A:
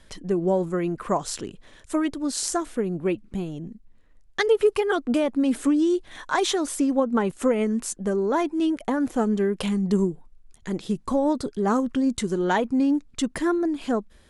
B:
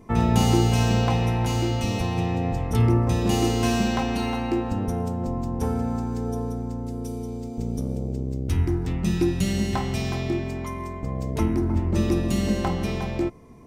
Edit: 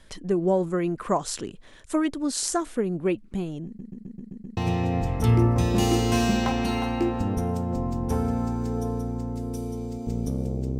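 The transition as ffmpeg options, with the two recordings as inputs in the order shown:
ffmpeg -i cue0.wav -i cue1.wav -filter_complex "[0:a]apad=whole_dur=10.79,atrim=end=10.79,asplit=7[link_01][link_02][link_03][link_04][link_05][link_06][link_07];[link_01]atrim=end=3.792[link_08];[link_02]atrim=start=3.658:end=3.792[link_09];[link_03]atrim=start=3.658:end=3.792[link_10];[link_04]atrim=start=3.658:end=3.792[link_11];[link_05]atrim=start=3.658:end=3.792[link_12];[link_06]atrim=start=3.658:end=3.792[link_13];[link_07]atrim=start=3.658:end=3.792[link_14];[1:a]atrim=start=2.078:end=8.3[link_15];[link_08][link_09]acrossfade=duration=0.004:curve1=hsin:curve2=hsin[link_16];[link_16][link_10]acrossfade=duration=0.004:curve1=hsin:curve2=hsin[link_17];[link_17][link_11]acrossfade=duration=0.004:curve1=hsin:curve2=hsin[link_18];[link_18][link_12]acrossfade=duration=0.004:curve1=hsin:curve2=hsin[link_19];[link_19][link_13]acrossfade=duration=0.004:curve1=hsin:curve2=hsin[link_20];[link_20][link_14]acrossfade=duration=0.004:curve1=hsin:curve2=hsin[link_21];[link_21][link_15]acrossfade=duration=0.004:curve1=hsin:curve2=hsin" out.wav

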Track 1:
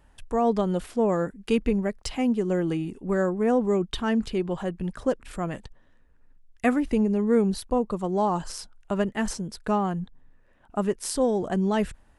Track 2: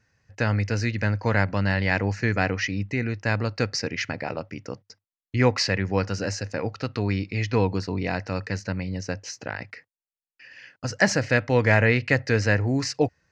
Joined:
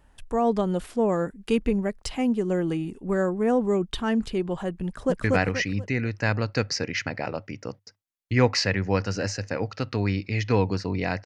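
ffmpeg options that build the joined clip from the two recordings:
ffmpeg -i cue0.wav -i cue1.wav -filter_complex "[0:a]apad=whole_dur=11.25,atrim=end=11.25,atrim=end=5.242[link_01];[1:a]atrim=start=2.268:end=8.28[link_02];[link_01][link_02]acrossfade=duration=0.004:curve1=hsin:curve2=hsin,asplit=2[link_03][link_04];[link_04]afade=type=in:start_time=4.85:duration=0.01,afade=type=out:start_time=5.24:duration=0.01,aecho=0:1:240|480|720|960|1200:0.944061|0.330421|0.115647|0.0404766|0.0141668[link_05];[link_03][link_05]amix=inputs=2:normalize=0" out.wav

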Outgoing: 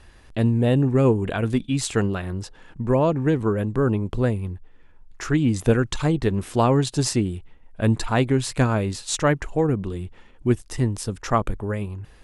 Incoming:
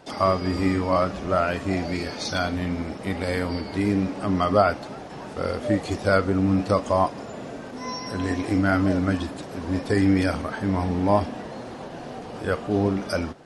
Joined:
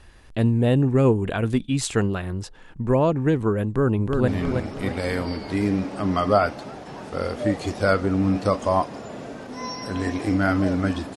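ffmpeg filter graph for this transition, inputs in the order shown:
ffmpeg -i cue0.wav -i cue1.wav -filter_complex "[0:a]apad=whole_dur=11.16,atrim=end=11.16,atrim=end=4.282[link_01];[1:a]atrim=start=2.518:end=9.4[link_02];[link_01][link_02]acrossfade=duration=0.004:curve1=hsin:curve2=hsin,asplit=2[link_03][link_04];[link_04]afade=type=in:start_time=3.66:duration=0.01,afade=type=out:start_time=4.28:duration=0.01,aecho=0:1:320|640|960|1280|1600|1920:0.630957|0.283931|0.127769|0.057496|0.0258732|0.0116429[link_05];[link_03][link_05]amix=inputs=2:normalize=0" out.wav

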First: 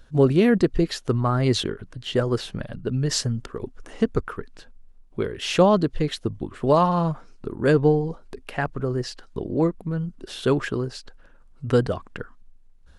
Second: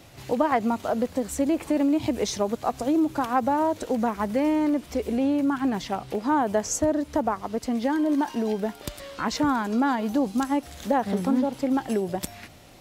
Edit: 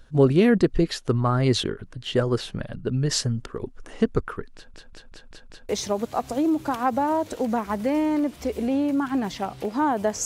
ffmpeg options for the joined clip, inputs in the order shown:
ffmpeg -i cue0.wav -i cue1.wav -filter_complex "[0:a]apad=whole_dur=10.25,atrim=end=10.25,asplit=6[link_01][link_02][link_03][link_04][link_05][link_06];[link_01]atrim=end=4.742[link_07];[link_02]atrim=start=4.548:end=4.742[link_08];[link_03]atrim=start=4.548:end=4.742[link_09];[link_04]atrim=start=4.548:end=4.742[link_10];[link_05]atrim=start=4.548:end=4.742[link_11];[link_06]atrim=start=4.548:end=4.742[link_12];[1:a]atrim=start=2.188:end=6.75[link_13];[link_07][link_08]acrossfade=duration=0.004:curve1=hsin:curve2=hsin[link_14];[link_14][link_09]acrossfade=duration=0.004:curve1=hsin:curve2=hsin[link_15];[link_15][link_10]acrossfade=duration=0.004:curve1=hsin:curve2=hsin[link_16];[link_16][link_11]acrossfade=duration=0.004:curve1=hsin:curve2=hsin[link_17];[link_17][link_12]acrossfade=duration=0.004:curve1=hsin:curve2=hsin[link_18];[link_18][link_13]acrossfade=duration=0.004:curve1=hsin:curve2=hsin" out.wav

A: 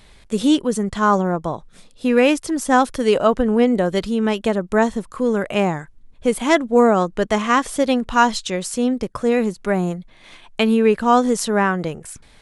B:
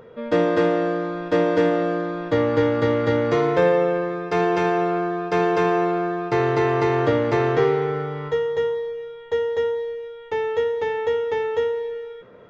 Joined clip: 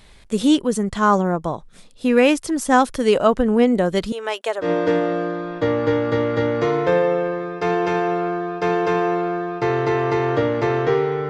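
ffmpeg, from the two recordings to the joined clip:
ffmpeg -i cue0.wav -i cue1.wav -filter_complex "[0:a]asettb=1/sr,asplit=3[link_01][link_02][link_03];[link_01]atrim=end=4.124[link_04];[link_02]atrim=start=4.12:end=4.71,asetpts=PTS-STARTPTS,afade=type=in:duration=0.004:curve=qsin,afade=type=out:start_time=0.586:duration=0.004:curve=qsin,highpass=frequency=490:width=0.5412,highpass=frequency=490:width=1.3066[link_05];[link_03]atrim=start=4.706[link_06];[link_04][link_05]acrossfade=duration=0.004:curve1=hsin:curve2=qsin[link_07];[link_07][link_06]acrossfade=duration=0.004:curve1=qsin:curve2=hsin,apad=whole_dur=11.29,atrim=end=11.29,atrim=end=4.71,asetpts=PTS-STARTPTS[link_08];[1:a]atrim=start=1.27:end=7.99,asetpts=PTS-STARTPTS[link_09];[link_08][link_09]acrossfade=duration=0.14:curve1=tri:curve2=tri" out.wav

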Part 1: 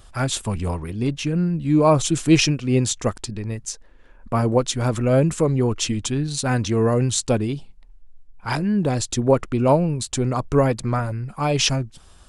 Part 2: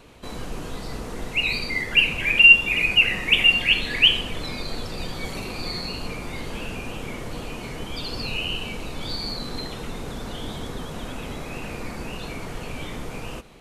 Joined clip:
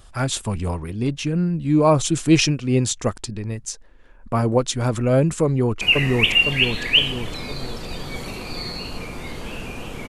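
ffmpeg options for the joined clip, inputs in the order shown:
ffmpeg -i cue0.wav -i cue1.wav -filter_complex "[0:a]apad=whole_dur=10.08,atrim=end=10.08,atrim=end=5.812[link_01];[1:a]atrim=start=2.898:end=7.17[link_02];[link_01][link_02]acrossfade=duration=0.004:curve1=hsin:curve2=hsin,asplit=2[link_03][link_04];[link_04]afade=type=in:start_time=5.44:duration=0.01,afade=type=out:start_time=5.81:duration=0.01,aecho=0:1:510|1020|1530|2040|2550|3060|3570|4080:0.944061|0.519233|0.285578|0.157068|0.0863875|0.0475131|0.0261322|0.0143727[link_05];[link_03][link_05]amix=inputs=2:normalize=0" out.wav

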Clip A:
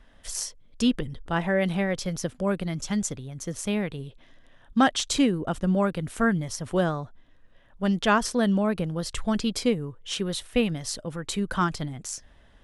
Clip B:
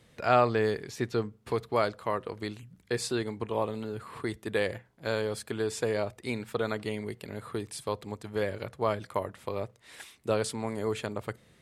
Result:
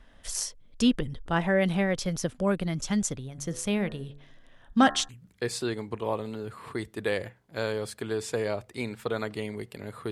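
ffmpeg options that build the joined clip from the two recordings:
ffmpeg -i cue0.wav -i cue1.wav -filter_complex "[0:a]asettb=1/sr,asplit=3[link_01][link_02][link_03];[link_01]atrim=end=3.274[link_04];[link_02]atrim=start=3.27:end=5.09,asetpts=PTS-STARTPTS,afade=type=in:duration=0.004:curve=qsin,afade=type=out:start_time=1.816:duration=0.004:curve=qsin,bandreject=frequency=71.5:width_type=h:width=4,bandreject=frequency=143:width_type=h:width=4,bandreject=frequency=214.5:width_type=h:width=4,bandreject=frequency=286:width_type=h:width=4,bandreject=frequency=357.5:width_type=h:width=4,bandreject=frequency=429:width_type=h:width=4,bandreject=frequency=500.5:width_type=h:width=4,bandreject=frequency=572:width_type=h:width=4,bandreject=frequency=643.5:width_type=h:width=4,bandreject=frequency=715:width_type=h:width=4,bandreject=frequency=786.5:width_type=h:width=4,bandreject=frequency=858:width_type=h:width=4,bandreject=frequency=929.5:width_type=h:width=4,bandreject=frequency=1001:width_type=h:width=4,bandreject=frequency=1072.5:width_type=h:width=4,bandreject=frequency=1144:width_type=h:width=4,bandreject=frequency=1215.5:width_type=h:width=4,bandreject=frequency=1287:width_type=h:width=4,bandreject=frequency=1358.5:width_type=h:width=4,bandreject=frequency=1430:width_type=h:width=4,bandreject=frequency=1501.5:width_type=h:width=4,bandreject=frequency=1573:width_type=h:width=4,bandreject=frequency=1644.5:width_type=h:width=4,bandreject=frequency=1716:width_type=h:width=4,bandreject=frequency=1787.5:width_type=h:width=4,bandreject=frequency=1859:width_type=h:width=4[link_05];[link_03]atrim=start=5.086[link_06];[link_04][link_05]acrossfade=duration=0.004:curve1=hsin:curve2=qsin[link_07];[link_07][link_06]acrossfade=duration=0.004:curve1=qsin:curve2=hsin,apad=whole_dur=10.11,atrim=end=10.11,atrim=end=5.092[link_08];[1:a]atrim=start=2.578:end=7.6[link_09];[link_08][link_09]acrossfade=duration=0.004:curve1=hsin:curve2=hsin" out.wav

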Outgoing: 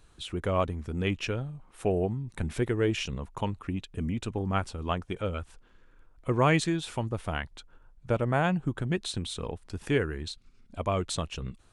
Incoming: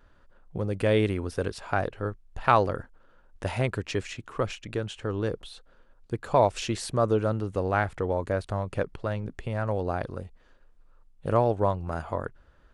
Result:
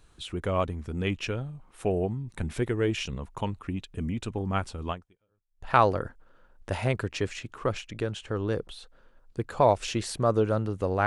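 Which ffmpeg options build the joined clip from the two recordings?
ffmpeg -i cue0.wav -i cue1.wav -filter_complex "[0:a]apad=whole_dur=11.06,atrim=end=11.06,atrim=end=5.69,asetpts=PTS-STARTPTS[link_01];[1:a]atrim=start=1.63:end=7.8,asetpts=PTS-STARTPTS[link_02];[link_01][link_02]acrossfade=duration=0.8:curve1=exp:curve2=exp" out.wav

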